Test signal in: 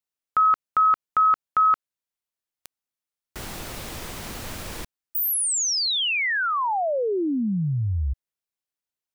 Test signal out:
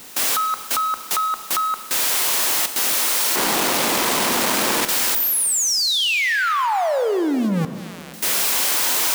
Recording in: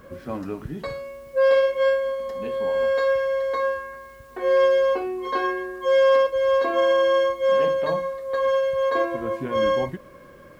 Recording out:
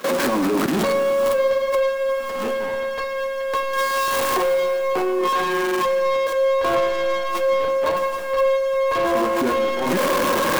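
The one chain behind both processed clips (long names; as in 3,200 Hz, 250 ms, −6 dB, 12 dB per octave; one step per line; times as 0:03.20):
converter with a step at zero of −28 dBFS
camcorder AGC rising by 43 dB per second
high-pass filter 210 Hz 24 dB per octave
dynamic equaliser 970 Hz, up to +6 dB, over −37 dBFS, Q 3.7
leveller curve on the samples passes 3
brickwall limiter −7 dBFS
output level in coarse steps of 20 dB
four-comb reverb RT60 2.3 s, combs from 28 ms, DRR 9.5 dB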